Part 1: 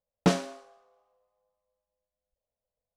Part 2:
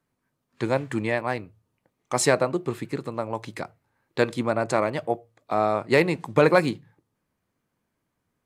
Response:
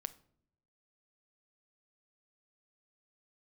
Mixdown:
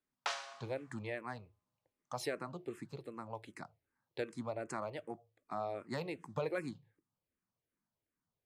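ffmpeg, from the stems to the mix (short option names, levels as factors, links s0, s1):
-filter_complex "[0:a]highpass=f=860:w=0.5412,highpass=f=860:w=1.3066,lowpass=6200,volume=0.944[s0];[1:a]asplit=2[s1][s2];[s2]afreqshift=-2.6[s3];[s1][s3]amix=inputs=2:normalize=1,volume=0.251[s4];[s0][s4]amix=inputs=2:normalize=0,acompressor=threshold=0.0141:ratio=2"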